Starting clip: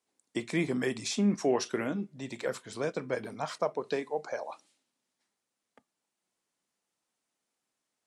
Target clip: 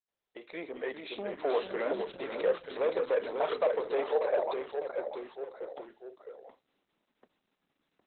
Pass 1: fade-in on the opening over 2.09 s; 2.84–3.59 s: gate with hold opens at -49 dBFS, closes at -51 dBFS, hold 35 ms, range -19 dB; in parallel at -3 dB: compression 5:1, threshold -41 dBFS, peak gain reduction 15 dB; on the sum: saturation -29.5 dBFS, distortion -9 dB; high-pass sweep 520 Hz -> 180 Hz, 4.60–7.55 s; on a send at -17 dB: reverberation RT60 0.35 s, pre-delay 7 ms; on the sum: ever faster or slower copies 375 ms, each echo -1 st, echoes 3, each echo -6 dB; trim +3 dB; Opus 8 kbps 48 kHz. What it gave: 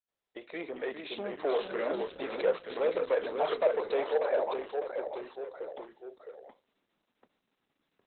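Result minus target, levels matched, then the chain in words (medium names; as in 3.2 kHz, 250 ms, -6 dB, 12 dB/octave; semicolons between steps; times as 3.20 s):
compression: peak gain reduction -8 dB
fade-in on the opening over 2.09 s; 2.84–3.59 s: gate with hold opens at -49 dBFS, closes at -51 dBFS, hold 35 ms, range -19 dB; in parallel at -3 dB: compression 5:1, threshold -51 dBFS, peak gain reduction 23 dB; on the sum: saturation -29.5 dBFS, distortion -10 dB; high-pass sweep 520 Hz -> 180 Hz, 4.60–7.55 s; on a send at -17 dB: reverberation RT60 0.35 s, pre-delay 7 ms; on the sum: ever faster or slower copies 375 ms, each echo -1 st, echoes 3, each echo -6 dB; trim +3 dB; Opus 8 kbps 48 kHz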